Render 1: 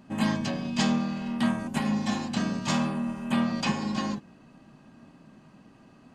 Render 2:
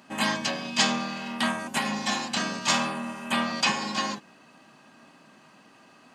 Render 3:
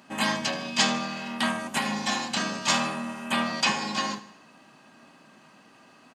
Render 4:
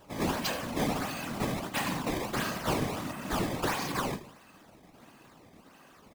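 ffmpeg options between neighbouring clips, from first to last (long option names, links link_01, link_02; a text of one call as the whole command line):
ffmpeg -i in.wav -af "highpass=frequency=1100:poles=1,volume=8.5dB" out.wav
ffmpeg -i in.wav -af "aecho=1:1:77|154|231|308|385:0.141|0.0749|0.0397|0.021|0.0111" out.wav
ffmpeg -i in.wav -af "acrusher=samples=18:mix=1:aa=0.000001:lfo=1:lforange=28.8:lforate=1.5,asoftclip=type=tanh:threshold=-23dB,afftfilt=real='hypot(re,im)*cos(2*PI*random(0))':imag='hypot(re,im)*sin(2*PI*random(1))':win_size=512:overlap=0.75,volume=4.5dB" out.wav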